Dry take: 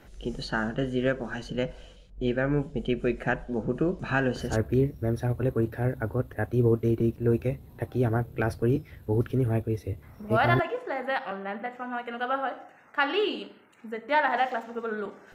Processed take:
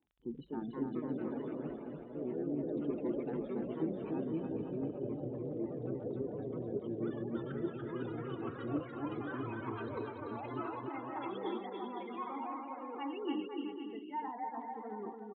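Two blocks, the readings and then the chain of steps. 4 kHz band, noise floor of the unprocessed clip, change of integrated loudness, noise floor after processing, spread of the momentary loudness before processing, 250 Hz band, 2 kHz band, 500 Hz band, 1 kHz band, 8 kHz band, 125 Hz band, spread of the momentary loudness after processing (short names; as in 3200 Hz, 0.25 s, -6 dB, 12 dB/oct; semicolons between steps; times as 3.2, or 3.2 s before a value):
-17.0 dB, -53 dBFS, -11.5 dB, -48 dBFS, 10 LU, -8.0 dB, -21.0 dB, -11.0 dB, -11.5 dB, n/a, -17.0 dB, 5 LU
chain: spectral gate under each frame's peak -15 dB strong; gate -39 dBFS, range -20 dB; comb 1.8 ms, depth 47%; dynamic EQ 180 Hz, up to +6 dB, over -39 dBFS, Q 0.78; reverse; compressor, threshold -32 dBFS, peak gain reduction 16.5 dB; reverse; vowel filter u; crackle 17/s -63 dBFS; echoes that change speed 0.289 s, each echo +3 st, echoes 3; on a send: bouncing-ball echo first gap 0.29 s, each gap 0.75×, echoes 5; on the sum: downsampling 8000 Hz; gain +7.5 dB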